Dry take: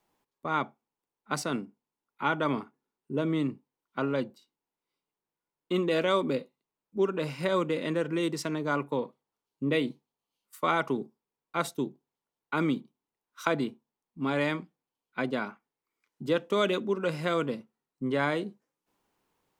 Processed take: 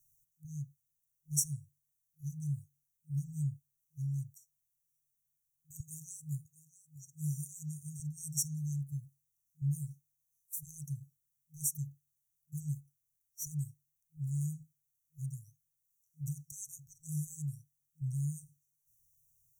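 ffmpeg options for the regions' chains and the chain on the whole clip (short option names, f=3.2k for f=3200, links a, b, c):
-filter_complex "[0:a]asettb=1/sr,asplit=3[a][b][c];[a]atrim=end=5.804[d];[b]atrim=start=5.8:end=8,asetpts=PTS-STARTPTS,afade=t=in:d=0.004:c=qsin,afade=t=out:st=2.196:d=0.004:c=qsin,highpass=f=86:w=0.5412,highpass=f=86:w=1.3066,aecho=1:1:650:0.158,atrim=end_sample=97020[e];[c]atrim=start=7.996[f];[d][e]acrossfade=d=0.004:c1=hsin:c2=qsin[g];[g][f]acrossfade=d=0.004:c1=qsin:c2=hsin,afftfilt=real='re*(1-between(b*sr/4096,160,5600))':imag='im*(1-between(b*sr/4096,160,5600))':win_size=4096:overlap=0.75,highshelf=f=9.2k:g=10.5,volume=5dB"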